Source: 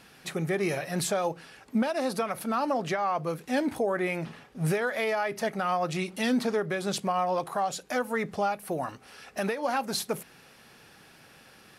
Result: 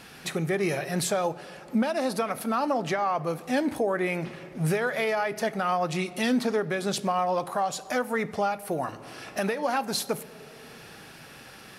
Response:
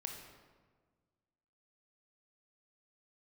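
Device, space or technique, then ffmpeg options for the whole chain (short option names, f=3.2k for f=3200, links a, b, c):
ducked reverb: -filter_complex "[0:a]asplit=3[a][b][c];[1:a]atrim=start_sample=2205[d];[b][d]afir=irnorm=-1:irlink=0[e];[c]apad=whole_len=519916[f];[e][f]sidechaincompress=threshold=-41dB:ratio=8:attack=32:release=549,volume=5dB[g];[a][g]amix=inputs=2:normalize=0"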